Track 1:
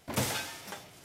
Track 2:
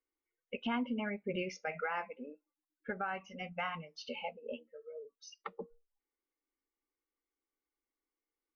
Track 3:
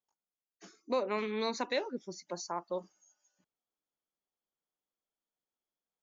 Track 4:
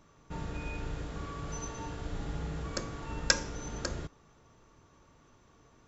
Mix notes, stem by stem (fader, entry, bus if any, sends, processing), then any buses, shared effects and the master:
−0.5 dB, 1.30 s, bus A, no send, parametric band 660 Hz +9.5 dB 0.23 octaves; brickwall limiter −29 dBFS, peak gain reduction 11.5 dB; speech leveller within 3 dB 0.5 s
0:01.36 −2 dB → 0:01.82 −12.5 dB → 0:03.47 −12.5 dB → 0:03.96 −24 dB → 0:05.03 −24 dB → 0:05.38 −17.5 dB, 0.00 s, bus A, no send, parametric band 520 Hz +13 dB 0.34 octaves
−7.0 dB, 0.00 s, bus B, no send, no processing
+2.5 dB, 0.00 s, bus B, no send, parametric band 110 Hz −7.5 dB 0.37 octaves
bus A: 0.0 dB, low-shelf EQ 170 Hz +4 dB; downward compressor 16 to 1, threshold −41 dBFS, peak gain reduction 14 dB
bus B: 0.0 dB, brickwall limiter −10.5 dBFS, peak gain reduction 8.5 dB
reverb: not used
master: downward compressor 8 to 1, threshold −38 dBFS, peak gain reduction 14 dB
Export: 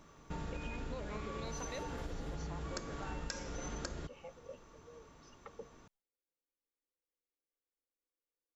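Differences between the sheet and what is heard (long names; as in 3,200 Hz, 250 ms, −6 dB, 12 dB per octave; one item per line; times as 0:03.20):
stem 1 −0.5 dB → −12.0 dB
stem 2 −2.0 dB → +4.5 dB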